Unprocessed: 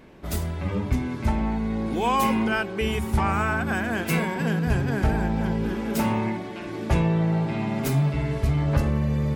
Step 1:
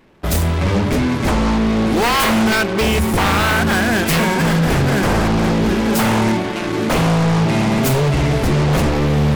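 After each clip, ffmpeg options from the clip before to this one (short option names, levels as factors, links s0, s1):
-af "aeval=exprs='0.316*sin(PI/2*3.98*val(0)/0.316)':c=same,aeval=exprs='0.316*(cos(1*acos(clip(val(0)/0.316,-1,1)))-cos(1*PI/2))+0.0141*(cos(3*acos(clip(val(0)/0.316,-1,1)))-cos(3*PI/2))+0.0501*(cos(7*acos(clip(val(0)/0.316,-1,1)))-cos(7*PI/2))':c=same,volume=0.794"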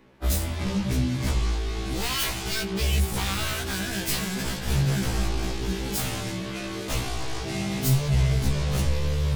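-filter_complex "[0:a]acrossover=split=170|3000[s0][s1][s2];[s1]acompressor=threshold=0.0398:ratio=6[s3];[s0][s3][s2]amix=inputs=3:normalize=0,afftfilt=real='re*1.73*eq(mod(b,3),0)':imag='im*1.73*eq(mod(b,3),0)':win_size=2048:overlap=0.75,volume=0.75"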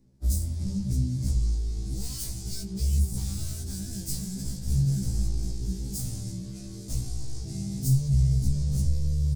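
-af "firequalizer=gain_entry='entry(130,0);entry(390,-15);entry(1100,-27);entry(1800,-26);entry(2900,-26);entry(4800,-7);entry(8500,-2);entry(12000,-8)':delay=0.05:min_phase=1"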